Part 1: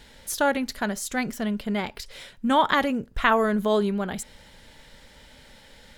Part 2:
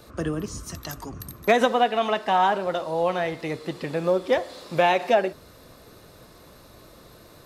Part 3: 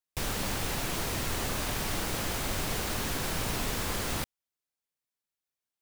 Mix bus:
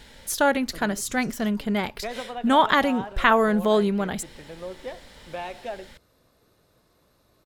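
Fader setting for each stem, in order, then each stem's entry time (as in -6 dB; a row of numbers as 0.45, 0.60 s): +2.0 dB, -14.5 dB, off; 0.00 s, 0.55 s, off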